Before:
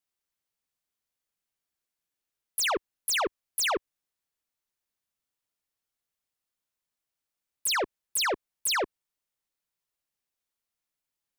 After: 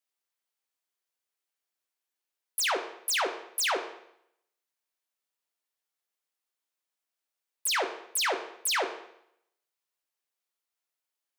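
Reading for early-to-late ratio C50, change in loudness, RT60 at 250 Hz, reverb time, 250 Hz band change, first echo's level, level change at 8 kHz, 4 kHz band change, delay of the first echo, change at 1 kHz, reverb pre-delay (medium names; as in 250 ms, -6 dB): 9.5 dB, -0.5 dB, 0.70 s, 0.70 s, -3.5 dB, no echo, -1.0 dB, -0.5 dB, no echo, 0.0 dB, 9 ms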